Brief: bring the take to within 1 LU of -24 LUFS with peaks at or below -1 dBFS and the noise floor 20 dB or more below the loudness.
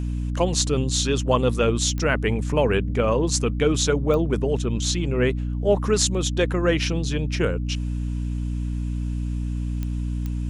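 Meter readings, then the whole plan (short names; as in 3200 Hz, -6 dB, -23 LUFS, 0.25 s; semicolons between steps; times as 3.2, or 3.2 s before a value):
clicks 4; hum 60 Hz; harmonics up to 300 Hz; hum level -23 dBFS; loudness -23.0 LUFS; peak -4.0 dBFS; loudness target -24.0 LUFS
-> de-click; de-hum 60 Hz, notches 5; gain -1 dB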